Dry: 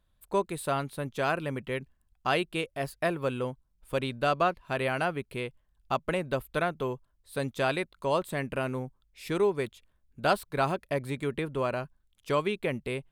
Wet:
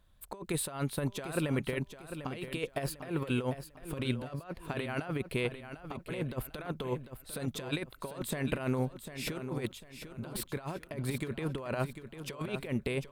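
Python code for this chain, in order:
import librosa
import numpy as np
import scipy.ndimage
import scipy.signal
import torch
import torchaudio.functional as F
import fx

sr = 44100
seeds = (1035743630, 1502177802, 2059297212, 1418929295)

p1 = fx.over_compress(x, sr, threshold_db=-34.0, ratio=-0.5)
y = p1 + fx.echo_feedback(p1, sr, ms=748, feedback_pct=33, wet_db=-10.0, dry=0)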